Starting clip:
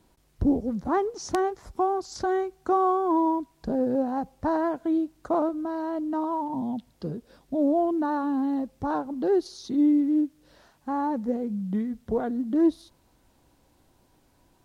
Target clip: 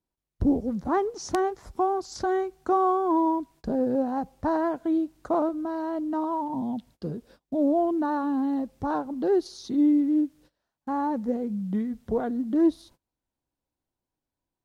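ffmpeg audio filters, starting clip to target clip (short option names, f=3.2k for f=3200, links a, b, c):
-af "agate=range=-25dB:threshold=-51dB:ratio=16:detection=peak"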